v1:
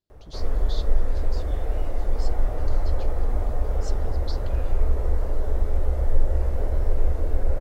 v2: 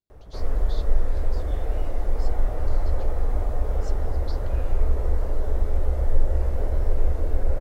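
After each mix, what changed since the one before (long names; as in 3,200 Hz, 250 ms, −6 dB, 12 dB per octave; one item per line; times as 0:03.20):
speech −6.0 dB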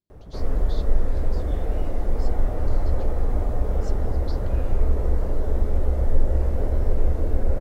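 master: add parametric band 190 Hz +8 dB 1.9 octaves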